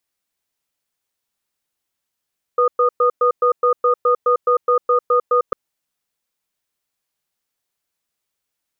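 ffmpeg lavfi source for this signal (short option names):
-f lavfi -i "aevalsrc='0.188*(sin(2*PI*490*t)+sin(2*PI*1230*t))*clip(min(mod(t,0.21),0.1-mod(t,0.21))/0.005,0,1)':d=2.95:s=44100"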